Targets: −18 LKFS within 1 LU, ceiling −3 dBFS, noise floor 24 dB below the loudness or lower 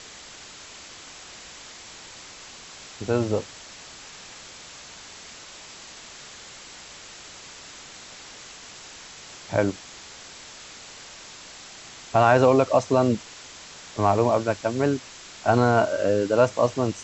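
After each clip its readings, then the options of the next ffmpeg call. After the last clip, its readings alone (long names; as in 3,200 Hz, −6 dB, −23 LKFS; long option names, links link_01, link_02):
background noise floor −44 dBFS; target noise floor −47 dBFS; integrated loudness −22.5 LKFS; sample peak −5.0 dBFS; target loudness −18.0 LKFS
→ -af "afftdn=noise_reduction=6:noise_floor=-44"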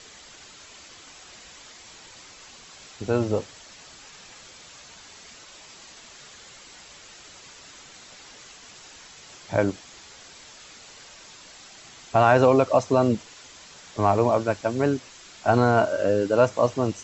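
background noise floor −48 dBFS; integrated loudness −22.5 LKFS; sample peak −5.0 dBFS; target loudness −18.0 LKFS
→ -af "volume=4.5dB,alimiter=limit=-3dB:level=0:latency=1"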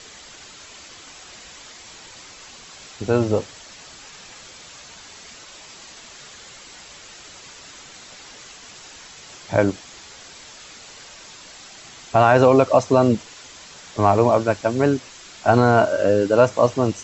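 integrated loudness −18.5 LKFS; sample peak −3.0 dBFS; background noise floor −43 dBFS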